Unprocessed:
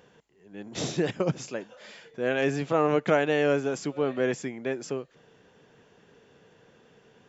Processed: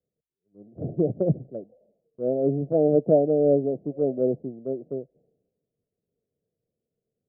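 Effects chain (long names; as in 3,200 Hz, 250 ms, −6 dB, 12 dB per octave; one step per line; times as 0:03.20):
Butterworth low-pass 690 Hz 72 dB per octave
in parallel at −3 dB: brickwall limiter −24.5 dBFS, peak gain reduction 10.5 dB
on the sum: multiband upward and downward expander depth 100%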